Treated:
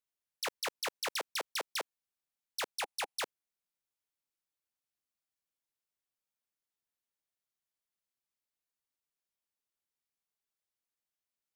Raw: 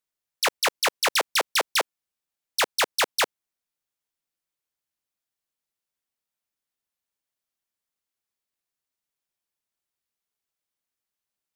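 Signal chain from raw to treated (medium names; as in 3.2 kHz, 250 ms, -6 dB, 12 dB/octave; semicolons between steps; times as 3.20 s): 2.78–3.20 s: graphic EQ with 31 bands 315 Hz -7 dB, 800 Hz +10 dB, 2.5 kHz +5 dB, 10 kHz +6 dB, 16 kHz -9 dB; level held to a coarse grid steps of 15 dB; trim -4.5 dB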